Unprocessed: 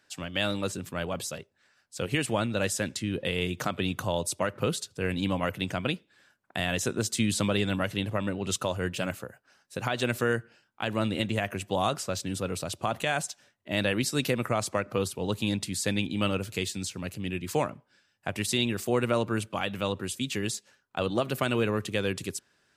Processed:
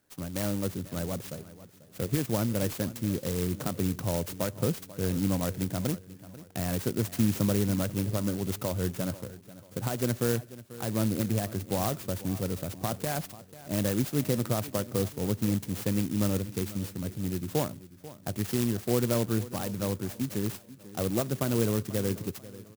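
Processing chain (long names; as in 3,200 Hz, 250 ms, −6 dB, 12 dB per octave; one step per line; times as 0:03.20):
low-shelf EQ 500 Hz +10.5 dB
notch filter 3,400 Hz, Q 7
repeating echo 490 ms, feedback 38%, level −17 dB
converter with an unsteady clock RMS 0.11 ms
level −7 dB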